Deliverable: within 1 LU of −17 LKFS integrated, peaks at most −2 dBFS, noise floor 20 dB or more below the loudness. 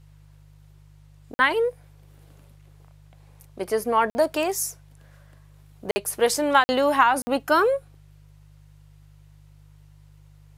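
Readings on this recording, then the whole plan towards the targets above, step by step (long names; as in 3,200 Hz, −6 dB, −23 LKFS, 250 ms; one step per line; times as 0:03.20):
number of dropouts 5; longest dropout 50 ms; mains hum 50 Hz; hum harmonics up to 150 Hz; level of the hum −49 dBFS; integrated loudness −22.5 LKFS; sample peak −4.5 dBFS; target loudness −17.0 LKFS
→ repair the gap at 0:01.34/0:04.10/0:05.91/0:06.64/0:07.22, 50 ms
hum removal 50 Hz, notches 3
level +5.5 dB
brickwall limiter −2 dBFS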